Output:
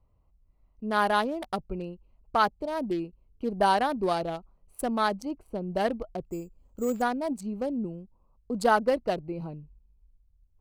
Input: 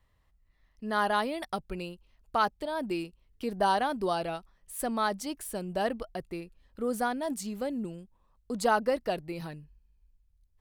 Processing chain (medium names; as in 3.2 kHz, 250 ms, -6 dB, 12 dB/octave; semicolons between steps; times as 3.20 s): local Wiener filter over 25 samples; 5.33–5.73 s: treble shelf 3.4 kHz -9.5 dB; 6.26–7.02 s: careless resampling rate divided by 6×, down none, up hold; trim +3.5 dB